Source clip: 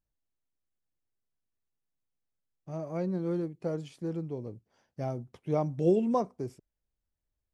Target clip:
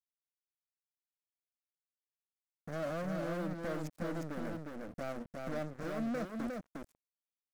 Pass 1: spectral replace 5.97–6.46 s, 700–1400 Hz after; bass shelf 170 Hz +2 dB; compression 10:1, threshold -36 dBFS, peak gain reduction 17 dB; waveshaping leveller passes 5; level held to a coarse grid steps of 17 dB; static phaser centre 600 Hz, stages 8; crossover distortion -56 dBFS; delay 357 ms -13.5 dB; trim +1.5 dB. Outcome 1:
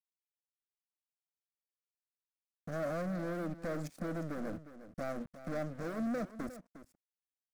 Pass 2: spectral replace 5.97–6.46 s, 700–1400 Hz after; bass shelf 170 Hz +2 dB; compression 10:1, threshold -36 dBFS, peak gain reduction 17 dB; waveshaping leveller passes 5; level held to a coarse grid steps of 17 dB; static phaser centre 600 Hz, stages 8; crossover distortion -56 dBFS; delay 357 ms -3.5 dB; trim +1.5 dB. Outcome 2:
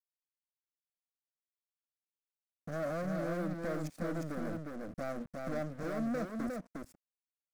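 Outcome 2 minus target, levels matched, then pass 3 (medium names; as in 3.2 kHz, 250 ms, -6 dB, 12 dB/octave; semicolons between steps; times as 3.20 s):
crossover distortion: distortion -8 dB
spectral replace 5.97–6.46 s, 700–1400 Hz after; bass shelf 170 Hz +2 dB; compression 10:1, threshold -36 dBFS, peak gain reduction 17 dB; waveshaping leveller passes 5; level held to a coarse grid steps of 17 dB; static phaser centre 600 Hz, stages 8; crossover distortion -47.5 dBFS; delay 357 ms -3.5 dB; trim +1.5 dB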